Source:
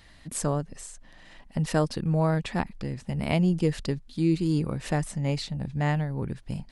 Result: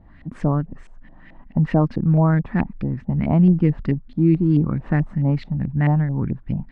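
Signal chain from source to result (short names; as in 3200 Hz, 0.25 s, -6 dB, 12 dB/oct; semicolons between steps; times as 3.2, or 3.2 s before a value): LFO low-pass saw up 4.6 Hz 620–2400 Hz; resonant low shelf 360 Hz +7.5 dB, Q 1.5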